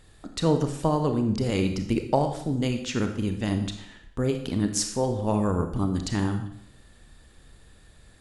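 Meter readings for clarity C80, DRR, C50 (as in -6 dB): 11.0 dB, 6.0 dB, 8.0 dB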